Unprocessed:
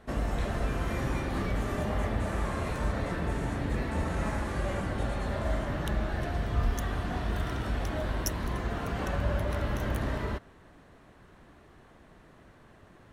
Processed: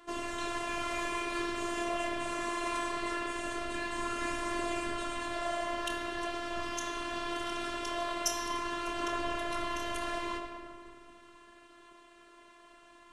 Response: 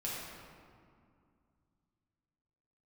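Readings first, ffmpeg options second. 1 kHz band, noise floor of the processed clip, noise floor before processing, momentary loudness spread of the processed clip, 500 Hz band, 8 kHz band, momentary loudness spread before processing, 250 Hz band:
+2.5 dB, -58 dBFS, -56 dBFS, 3 LU, -2.0 dB, +5.0 dB, 2 LU, -4.0 dB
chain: -filter_complex "[0:a]aphaser=in_gain=1:out_gain=1:delay=3.7:decay=0.28:speed=0.22:type=triangular,crystalizer=i=2:c=0,highpass=f=110:w=0.5412,highpass=f=110:w=1.3066,equalizer=f=290:t=q:w=4:g=-7,equalizer=f=510:t=q:w=4:g=6,equalizer=f=780:t=q:w=4:g=-9,equalizer=f=1.1k:t=q:w=4:g=7,equalizer=f=2.9k:t=q:w=4:g=7,lowpass=f=9k:w=0.5412,lowpass=f=9k:w=1.3066,asplit=2[a][b];[1:a]atrim=start_sample=2205,adelay=26[c];[b][c]afir=irnorm=-1:irlink=0,volume=-5dB[d];[a][d]amix=inputs=2:normalize=0,afftfilt=real='hypot(re,im)*cos(PI*b)':imag='0':win_size=512:overlap=0.75"

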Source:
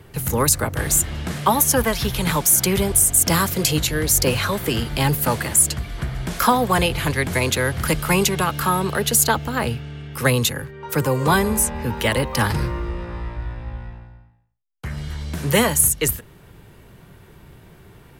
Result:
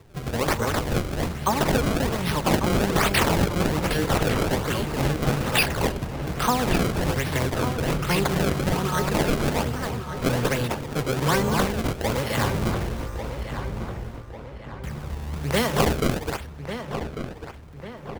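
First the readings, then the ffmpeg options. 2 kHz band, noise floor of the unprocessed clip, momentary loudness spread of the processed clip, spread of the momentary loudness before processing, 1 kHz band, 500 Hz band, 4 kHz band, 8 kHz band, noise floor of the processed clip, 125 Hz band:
-3.5 dB, -48 dBFS, 12 LU, 15 LU, -3.5 dB, -1.5 dB, -4.0 dB, -15.0 dB, -39 dBFS, -2.0 dB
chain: -filter_complex "[0:a]asplit=2[a][b];[b]aecho=0:1:192.4|259.5:0.316|0.708[c];[a][c]amix=inputs=2:normalize=0,acrusher=samples=28:mix=1:aa=0.000001:lfo=1:lforange=44.8:lforate=1.2,asplit=2[d][e];[e]adelay=1146,lowpass=f=2.8k:p=1,volume=-9dB,asplit=2[f][g];[g]adelay=1146,lowpass=f=2.8k:p=1,volume=0.5,asplit=2[h][i];[i]adelay=1146,lowpass=f=2.8k:p=1,volume=0.5,asplit=2[j][k];[k]adelay=1146,lowpass=f=2.8k:p=1,volume=0.5,asplit=2[l][m];[m]adelay=1146,lowpass=f=2.8k:p=1,volume=0.5,asplit=2[n][o];[o]adelay=1146,lowpass=f=2.8k:p=1,volume=0.5[p];[f][h][j][l][n][p]amix=inputs=6:normalize=0[q];[d][q]amix=inputs=2:normalize=0,volume=-6dB"

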